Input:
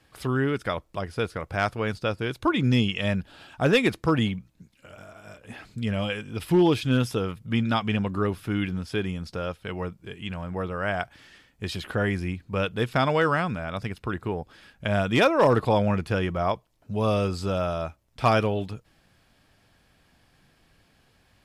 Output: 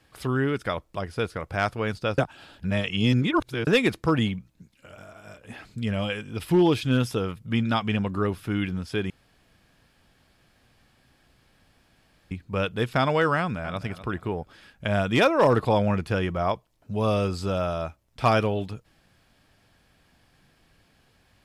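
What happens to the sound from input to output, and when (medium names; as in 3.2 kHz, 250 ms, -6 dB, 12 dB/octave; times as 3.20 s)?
2.18–3.67 s: reverse
9.10–12.31 s: room tone
13.39–13.80 s: echo throw 250 ms, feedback 30%, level -13.5 dB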